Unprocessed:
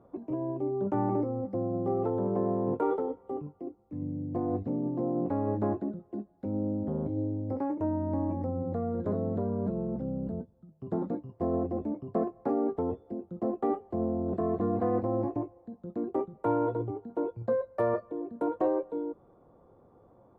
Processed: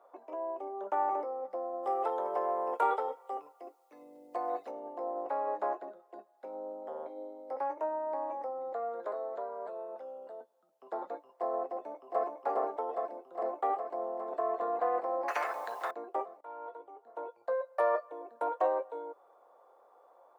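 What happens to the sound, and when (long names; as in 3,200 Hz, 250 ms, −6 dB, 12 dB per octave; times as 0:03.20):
0:01.83–0:04.71: high-shelf EQ 2,000 Hz +11 dB
0:09.07–0:10.41: parametric band 160 Hz −9.5 dB 1.6 octaves
0:11.68–0:12.25: delay throw 410 ms, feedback 80%, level −2 dB
0:15.28–0:15.91: every bin compressed towards the loudest bin 4 to 1
0:16.41–0:17.95: fade in, from −22 dB
whole clip: high-pass filter 610 Hz 24 dB per octave; level +4.5 dB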